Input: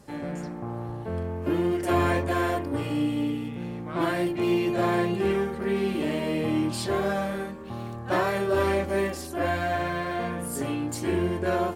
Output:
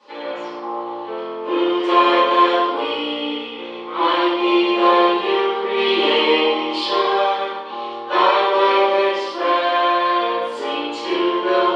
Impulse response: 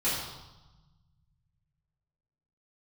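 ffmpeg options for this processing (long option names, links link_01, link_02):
-filter_complex "[0:a]asettb=1/sr,asplit=3[link_01][link_02][link_03];[link_01]atrim=end=5.774[link_04];[link_02]atrim=start=5.77:end=6.39,asetpts=PTS-STARTPTS,afade=type=in:duration=0.004:curve=qsin,afade=type=out:start_time=0.616:duration=0.004:curve=qsin,acontrast=37[link_05];[link_03]atrim=start=6.386[link_06];[link_04][link_05]acrossfade=duration=0.004:curve1=hsin:curve2=qsin[link_07];[link_07][link_06]acrossfade=duration=0.004:curve1=qsin:curve2=hsin,highpass=frequency=420:width=0.5412,highpass=frequency=420:width=1.3066,equalizer=frequency=660:width_type=q:width=4:gain=-8,equalizer=frequency=1000:width_type=q:width=4:gain=6,equalizer=frequency=1700:width_type=q:width=4:gain=-6,equalizer=frequency=3200:width_type=q:width=4:gain=8,lowpass=frequency=4600:width=0.5412,lowpass=frequency=4600:width=1.3066[link_08];[1:a]atrim=start_sample=2205,afade=type=out:start_time=0.42:duration=0.01,atrim=end_sample=18963[link_09];[link_08][link_09]afir=irnorm=-1:irlink=0,volume=2dB"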